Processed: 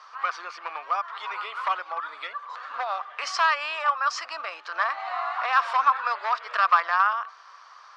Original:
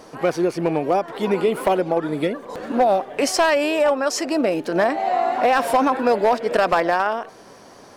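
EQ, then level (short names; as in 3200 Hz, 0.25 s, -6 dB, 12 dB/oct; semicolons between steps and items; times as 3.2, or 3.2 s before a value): ladder high-pass 1100 Hz, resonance 75%; LPF 4900 Hz 24 dB/oct; high shelf 3800 Hz +7.5 dB; +4.5 dB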